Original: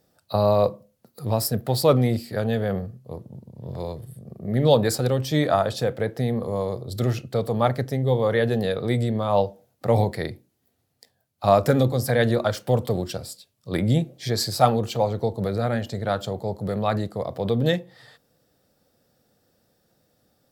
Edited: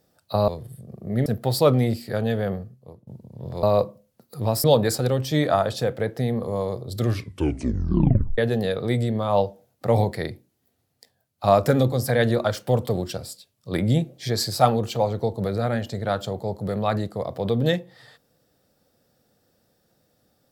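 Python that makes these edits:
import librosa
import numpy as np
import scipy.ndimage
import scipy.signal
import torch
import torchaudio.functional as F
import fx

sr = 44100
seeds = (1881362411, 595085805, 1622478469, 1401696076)

y = fx.edit(x, sr, fx.swap(start_s=0.48, length_s=1.01, other_s=3.86, other_length_s=0.78),
    fx.fade_out_to(start_s=2.65, length_s=0.65, floor_db=-16.5),
    fx.tape_stop(start_s=6.99, length_s=1.39), tone=tone)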